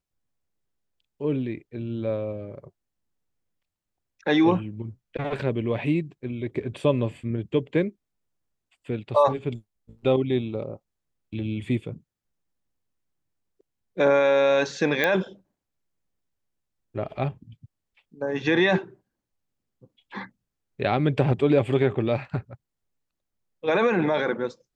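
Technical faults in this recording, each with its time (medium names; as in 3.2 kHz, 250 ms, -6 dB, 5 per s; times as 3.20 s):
15.04 s: pop -9 dBFS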